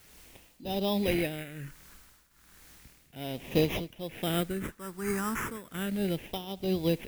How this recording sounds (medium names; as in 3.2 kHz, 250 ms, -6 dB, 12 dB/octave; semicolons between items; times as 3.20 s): aliases and images of a low sample rate 4.4 kHz, jitter 0%; phasing stages 4, 0.34 Hz, lowest notch 620–1400 Hz; a quantiser's noise floor 10-bit, dither triangular; tremolo triangle 1.2 Hz, depth 85%